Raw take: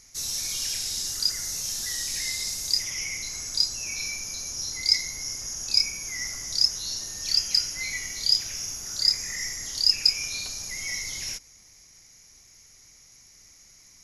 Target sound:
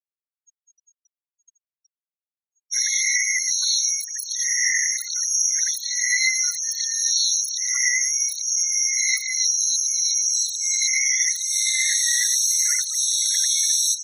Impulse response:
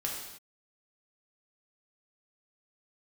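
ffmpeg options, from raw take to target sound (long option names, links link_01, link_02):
-filter_complex "[0:a]areverse,afftdn=noise_reduction=20:noise_floor=-46,asplit=2[link_01][link_02];[link_02]aecho=0:1:112:0.237[link_03];[link_01][link_03]amix=inputs=2:normalize=0,aeval=exprs='0.531*(cos(1*acos(clip(val(0)/0.531,-1,1)))-cos(1*PI/2))+0.0422*(cos(3*acos(clip(val(0)/0.531,-1,1)))-cos(3*PI/2))+0.075*(cos(4*acos(clip(val(0)/0.531,-1,1)))-cos(4*PI/2))+0.0668*(cos(5*acos(clip(val(0)/0.531,-1,1)))-cos(5*PI/2))+0.00841*(cos(6*acos(clip(val(0)/0.531,-1,1)))-cos(6*PI/2))':channel_layout=same,acrossover=split=130|300[link_04][link_05][link_06];[link_04]acompressor=threshold=-42dB:ratio=4[link_07];[link_05]acompressor=threshold=-54dB:ratio=4[link_08];[link_06]acompressor=threshold=-26dB:ratio=4[link_09];[link_07][link_08][link_09]amix=inputs=3:normalize=0,afftfilt=real='re*gte(hypot(re,im),0.0112)':imag='im*gte(hypot(re,im),0.0112)':win_size=1024:overlap=0.75,asplit=2[link_10][link_11];[link_11]alimiter=limit=-22.5dB:level=0:latency=1:release=188,volume=-2dB[link_12];[link_10][link_12]amix=inputs=2:normalize=0,bandreject=frequency=2400:width=6.4,afftfilt=real='re*eq(mod(floor(b*sr/1024/1100),2),1)':imag='im*eq(mod(floor(b*sr/1024/1100),2),1)':win_size=1024:overlap=0.75,volume=8.5dB"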